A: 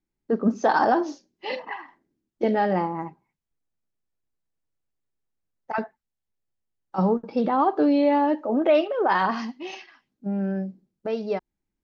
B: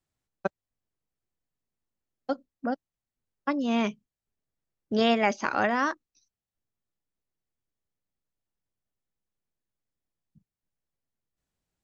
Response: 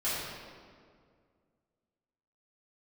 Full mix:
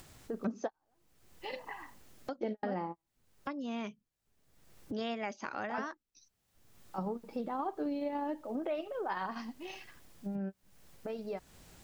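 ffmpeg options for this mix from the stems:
-filter_complex "[0:a]volume=0.75[s0];[1:a]acompressor=mode=upward:threshold=0.0562:ratio=2.5,volume=0.562,asplit=2[s1][s2];[s2]apad=whole_len=522100[s3];[s0][s3]sidechaingate=range=0.00224:threshold=0.00158:ratio=16:detection=peak[s4];[s4][s1]amix=inputs=2:normalize=0,acompressor=threshold=0.00891:ratio=2"

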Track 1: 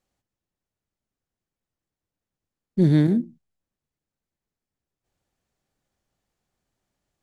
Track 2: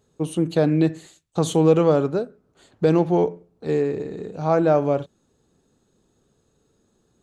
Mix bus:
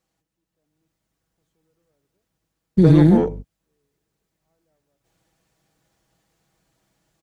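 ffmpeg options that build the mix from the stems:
-filter_complex "[0:a]highpass=44,aecho=1:1:6.2:0.55,alimiter=limit=0.178:level=0:latency=1:release=83,volume=1.26,asplit=2[s0][s1];[1:a]acontrast=33,aeval=exprs='val(0)+0.0501*(sin(2*PI*50*n/s)+sin(2*PI*2*50*n/s)/2+sin(2*PI*3*50*n/s)/3+sin(2*PI*4*50*n/s)/4+sin(2*PI*5*50*n/s)/5)':c=same,asoftclip=type=tanh:threshold=0.447,volume=0.251[s2];[s1]apad=whole_len=318552[s3];[s2][s3]sidechaingate=range=0.002:threshold=0.00398:ratio=16:detection=peak[s4];[s0][s4]amix=inputs=2:normalize=0,dynaudnorm=f=450:g=3:m=2.51"

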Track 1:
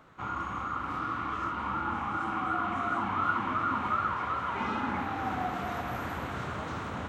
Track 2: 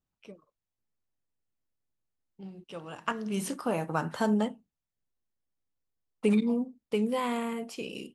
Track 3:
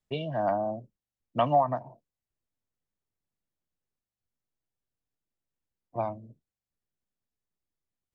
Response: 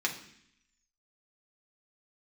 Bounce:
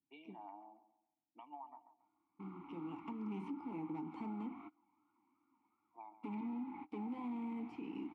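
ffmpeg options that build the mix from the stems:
-filter_complex "[0:a]adelay=1800,volume=0.473[s0];[1:a]equalizer=f=130:t=o:w=2.5:g=10.5,acrossover=split=220|860|3400[s1][s2][s3][s4];[s1]acompressor=threshold=0.0158:ratio=4[s5];[s2]acompressor=threshold=0.0708:ratio=4[s6];[s3]acompressor=threshold=0.00708:ratio=4[s7];[s4]acompressor=threshold=0.00224:ratio=4[s8];[s5][s6][s7][s8]amix=inputs=4:normalize=0,volume=17.8,asoftclip=hard,volume=0.0562,volume=1.33,asplit=2[s9][s10];[2:a]highpass=620,alimiter=limit=0.0708:level=0:latency=1:release=419,volume=0.596,asplit=2[s11][s12];[s12]volume=0.211[s13];[s10]apad=whole_len=396381[s14];[s0][s14]sidechaingate=range=0.0398:threshold=0.00355:ratio=16:detection=peak[s15];[s13]aecho=0:1:139|278|417|556|695:1|0.33|0.109|0.0359|0.0119[s16];[s15][s9][s11][s16]amix=inputs=4:normalize=0,asplit=3[s17][s18][s19];[s17]bandpass=f=300:t=q:w=8,volume=1[s20];[s18]bandpass=f=870:t=q:w=8,volume=0.501[s21];[s19]bandpass=f=2240:t=q:w=8,volume=0.355[s22];[s20][s21][s22]amix=inputs=3:normalize=0,alimiter=level_in=3.76:limit=0.0631:level=0:latency=1:release=162,volume=0.266"

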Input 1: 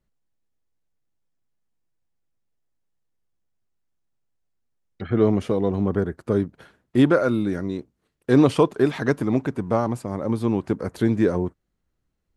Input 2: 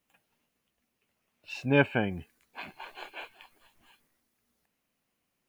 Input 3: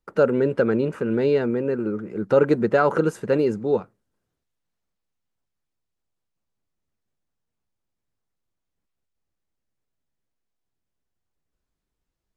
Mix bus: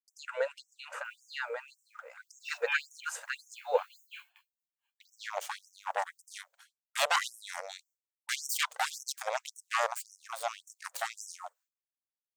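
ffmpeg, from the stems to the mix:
-filter_complex "[0:a]bass=f=250:g=-9,treble=f=4000:g=11,aeval=exprs='0.531*(cos(1*acos(clip(val(0)/0.531,-1,1)))-cos(1*PI/2))+0.0237*(cos(7*acos(clip(val(0)/0.531,-1,1)))-cos(7*PI/2))+0.168*(cos(8*acos(clip(val(0)/0.531,-1,1)))-cos(8*PI/2))':c=same,volume=0.473[s0];[1:a]highpass=1000,adelay=950,volume=0.75[s1];[2:a]volume=1.06[s2];[s0][s1][s2]amix=inputs=3:normalize=0,aexciter=amount=1.6:drive=2.4:freq=6500,agate=range=0.0224:threshold=0.00355:ratio=3:detection=peak,afftfilt=real='re*gte(b*sr/1024,460*pow(5500/460,0.5+0.5*sin(2*PI*1.8*pts/sr)))':imag='im*gte(b*sr/1024,460*pow(5500/460,0.5+0.5*sin(2*PI*1.8*pts/sr)))':win_size=1024:overlap=0.75"

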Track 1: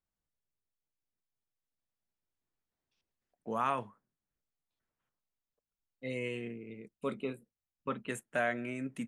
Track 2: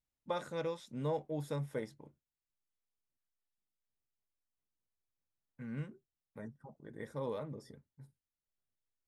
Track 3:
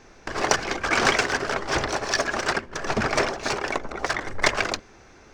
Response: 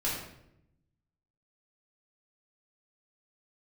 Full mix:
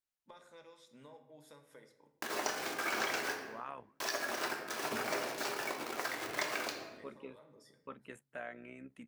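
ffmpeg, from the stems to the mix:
-filter_complex "[0:a]bass=f=250:g=-6,treble=f=4000:g=-8,tremolo=f=67:d=0.571,volume=0.422,asplit=2[s0][s1];[1:a]highpass=f=1000:p=1,acompressor=threshold=0.002:ratio=4,volume=0.668,asplit=2[s2][s3];[s3]volume=0.282[s4];[2:a]acrusher=bits=4:mix=0:aa=0.000001,highpass=250,adelay=1950,volume=0.376,asplit=3[s5][s6][s7];[s5]atrim=end=3.35,asetpts=PTS-STARTPTS,afade=t=out:st=3.346:d=0.004:c=hsin[s8];[s6]atrim=start=3.35:end=4,asetpts=PTS-STARTPTS,volume=0[s9];[s7]atrim=start=4,asetpts=PTS-STARTPTS,afade=t=in:d=0.004:c=hsin[s10];[s8][s9][s10]concat=n=3:v=0:a=1,asplit=2[s11][s12];[s12]volume=0.531[s13];[s1]apad=whole_len=400120[s14];[s2][s14]sidechaincompress=threshold=0.00251:ratio=8:attack=16:release=183[s15];[3:a]atrim=start_sample=2205[s16];[s4][s13]amix=inputs=2:normalize=0[s17];[s17][s16]afir=irnorm=-1:irlink=0[s18];[s0][s15][s11][s18]amix=inputs=4:normalize=0,acompressor=threshold=0.00891:ratio=2"

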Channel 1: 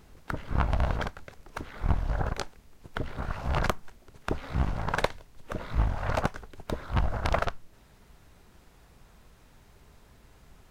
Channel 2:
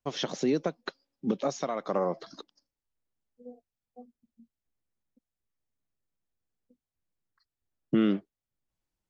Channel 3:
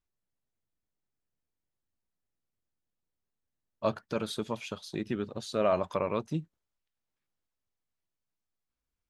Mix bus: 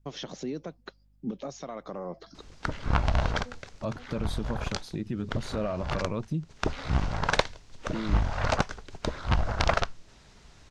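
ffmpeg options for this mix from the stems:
-filter_complex "[0:a]lowpass=f=6200:w=0.5412,lowpass=f=6200:w=1.3066,aemphasis=mode=production:type=75fm,adelay=2350,volume=1.26[s0];[1:a]alimiter=limit=0.0631:level=0:latency=1:release=99,aeval=exprs='val(0)+0.000501*(sin(2*PI*50*n/s)+sin(2*PI*2*50*n/s)/2+sin(2*PI*3*50*n/s)/3+sin(2*PI*4*50*n/s)/4+sin(2*PI*5*50*n/s)/5)':c=same,volume=0.631[s1];[2:a]lowshelf=f=340:g=7,bandreject=f=400:w=12,volume=0.944,asplit=2[s2][s3];[s3]apad=whole_len=575744[s4];[s0][s4]sidechaincompress=threshold=0.02:ratio=6:attack=28:release=266[s5];[s1][s2]amix=inputs=2:normalize=0,lowshelf=f=150:g=10,alimiter=limit=0.0794:level=0:latency=1:release=168,volume=1[s6];[s5][s6]amix=inputs=2:normalize=0"

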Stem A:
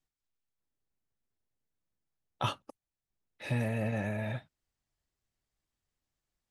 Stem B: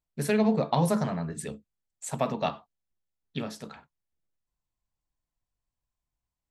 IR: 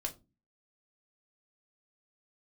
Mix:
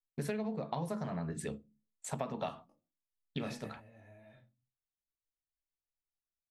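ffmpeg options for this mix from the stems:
-filter_complex "[0:a]acompressor=threshold=0.0224:ratio=6,flanger=delay=20:depth=2.5:speed=0.32,volume=0.531,asplit=2[s0][s1];[s1]volume=0.224[s2];[1:a]aemphasis=mode=reproduction:type=cd,agate=range=0.0562:threshold=0.00447:ratio=16:detection=peak,highshelf=f=8300:g=4,volume=0.708,asplit=3[s3][s4][s5];[s4]volume=0.251[s6];[s5]apad=whole_len=286674[s7];[s0][s7]sidechaingate=range=0.0224:threshold=0.00631:ratio=16:detection=peak[s8];[2:a]atrim=start_sample=2205[s9];[s2][s6]amix=inputs=2:normalize=0[s10];[s10][s9]afir=irnorm=-1:irlink=0[s11];[s8][s3][s11]amix=inputs=3:normalize=0,acompressor=threshold=0.0224:ratio=12"

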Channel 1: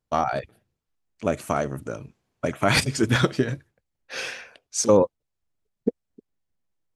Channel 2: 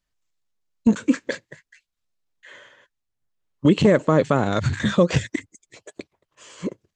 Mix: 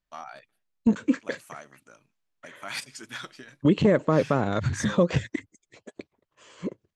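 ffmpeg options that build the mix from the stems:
-filter_complex "[0:a]highpass=340,equalizer=f=440:w=0.92:g=-13.5,acontrast=44,volume=0.141[s0];[1:a]lowpass=f=3400:p=1,volume=0.631[s1];[s0][s1]amix=inputs=2:normalize=0"

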